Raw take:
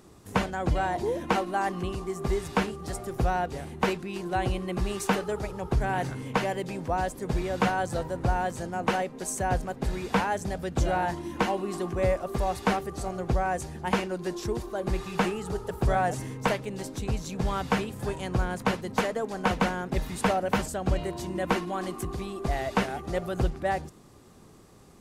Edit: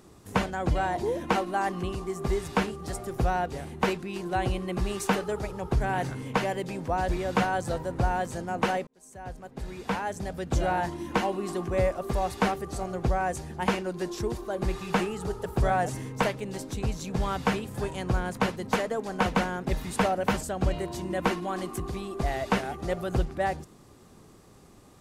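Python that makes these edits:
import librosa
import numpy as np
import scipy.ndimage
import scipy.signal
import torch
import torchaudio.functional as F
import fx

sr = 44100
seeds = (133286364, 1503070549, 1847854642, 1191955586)

y = fx.edit(x, sr, fx.cut(start_s=7.09, length_s=0.25),
    fx.fade_in_span(start_s=9.12, length_s=1.8), tone=tone)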